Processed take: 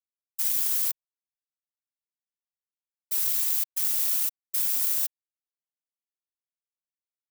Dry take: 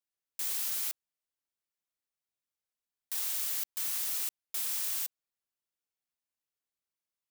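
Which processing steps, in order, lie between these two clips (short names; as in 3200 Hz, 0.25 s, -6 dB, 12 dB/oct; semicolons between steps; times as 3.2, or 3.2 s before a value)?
tilt +3.5 dB/oct; whisperiser; power-law curve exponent 1.4; gain -2 dB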